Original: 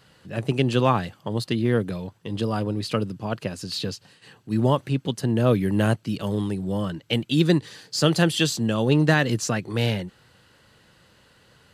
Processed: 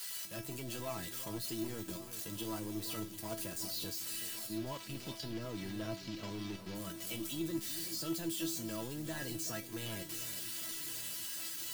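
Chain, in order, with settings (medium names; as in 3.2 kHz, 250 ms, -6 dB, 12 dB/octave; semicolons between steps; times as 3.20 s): zero-crossing glitches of -13.5 dBFS; 4.56–6.75 s: low-pass 5.1 kHz 24 dB/octave; level held to a coarse grid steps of 14 dB; saturation -23.5 dBFS, distortion -12 dB; feedback comb 330 Hz, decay 0.22 s, harmonics all, mix 90%; echo whose repeats swap between lows and highs 373 ms, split 1.7 kHz, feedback 78%, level -11.5 dB; trim +3 dB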